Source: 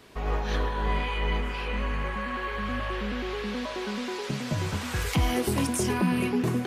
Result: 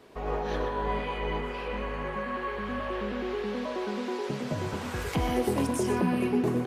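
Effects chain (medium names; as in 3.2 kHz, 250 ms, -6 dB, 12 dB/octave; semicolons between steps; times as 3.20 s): peaking EQ 500 Hz +9.5 dB 2.6 oct; echo from a far wall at 21 m, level -8 dB; trim -7.5 dB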